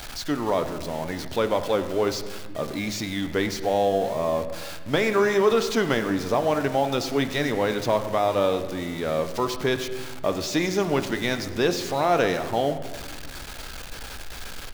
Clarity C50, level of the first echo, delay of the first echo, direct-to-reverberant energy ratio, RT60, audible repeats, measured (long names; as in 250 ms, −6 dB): 10.5 dB, −18.5 dB, 100 ms, 8.0 dB, 1.6 s, 1